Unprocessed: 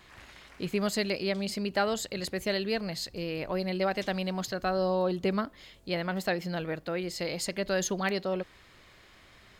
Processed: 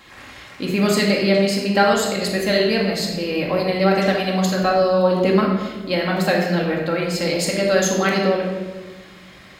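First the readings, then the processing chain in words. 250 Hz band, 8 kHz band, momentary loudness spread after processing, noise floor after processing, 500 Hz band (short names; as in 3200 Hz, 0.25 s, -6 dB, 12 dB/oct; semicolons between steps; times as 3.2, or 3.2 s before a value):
+13.0 dB, +10.5 dB, 8 LU, -43 dBFS, +12.5 dB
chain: HPF 110 Hz 6 dB/oct; shoebox room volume 980 m³, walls mixed, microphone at 2.2 m; gain +7.5 dB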